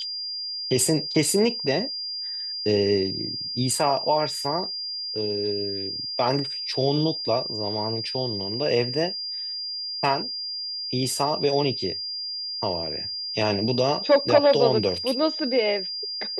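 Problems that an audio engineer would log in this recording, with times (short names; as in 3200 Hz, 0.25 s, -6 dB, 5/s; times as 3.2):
tone 4800 Hz -29 dBFS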